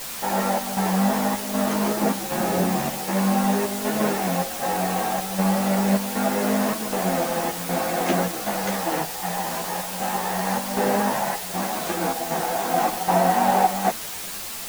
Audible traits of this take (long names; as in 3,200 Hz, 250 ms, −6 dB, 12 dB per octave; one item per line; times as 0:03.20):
chopped level 1.3 Hz, depth 65%, duty 75%
a quantiser's noise floor 6 bits, dither triangular
a shimmering, thickened sound